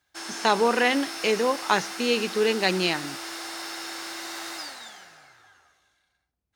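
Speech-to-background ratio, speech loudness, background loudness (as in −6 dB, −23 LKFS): 10.5 dB, −24.0 LKFS, −34.5 LKFS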